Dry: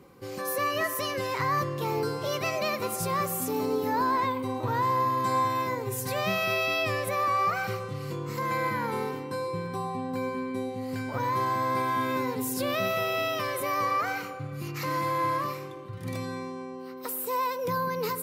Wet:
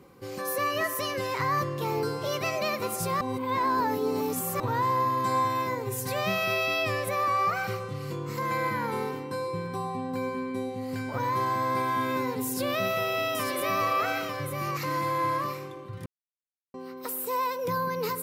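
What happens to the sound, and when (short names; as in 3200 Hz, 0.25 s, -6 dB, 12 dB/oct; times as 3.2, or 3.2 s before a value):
3.21–4.6 reverse
12.45–14.77 echo 0.897 s -5 dB
16.06–16.74 mute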